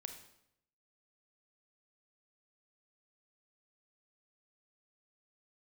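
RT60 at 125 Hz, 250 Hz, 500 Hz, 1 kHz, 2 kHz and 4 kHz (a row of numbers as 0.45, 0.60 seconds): 0.90, 0.85, 0.80, 0.75, 0.70, 0.65 seconds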